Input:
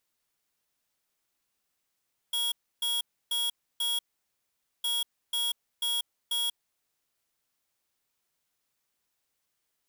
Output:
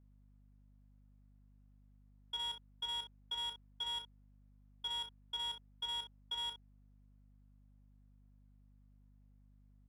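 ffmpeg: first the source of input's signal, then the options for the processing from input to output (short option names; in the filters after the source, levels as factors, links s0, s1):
-f lavfi -i "aevalsrc='0.0355*(2*lt(mod(3320*t,1),0.5)-1)*clip(min(mod(mod(t,2.51),0.49),0.19-mod(mod(t,2.51),0.49))/0.005,0,1)*lt(mod(t,2.51),1.96)':d=5.02:s=44100"
-filter_complex "[0:a]asplit=2[s0][s1];[s1]aecho=0:1:33|62:0.422|0.398[s2];[s0][s2]amix=inputs=2:normalize=0,adynamicsmooth=sensitivity=2.5:basefreq=1200,aeval=exprs='val(0)+0.000708*(sin(2*PI*50*n/s)+sin(2*PI*2*50*n/s)/2+sin(2*PI*3*50*n/s)/3+sin(2*PI*4*50*n/s)/4+sin(2*PI*5*50*n/s)/5)':c=same"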